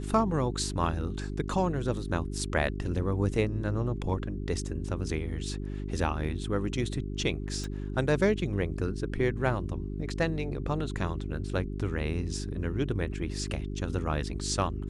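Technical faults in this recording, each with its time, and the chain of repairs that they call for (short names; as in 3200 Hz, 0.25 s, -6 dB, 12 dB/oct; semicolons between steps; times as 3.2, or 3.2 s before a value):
hum 50 Hz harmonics 8 -35 dBFS
7.64 pop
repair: de-click; de-hum 50 Hz, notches 8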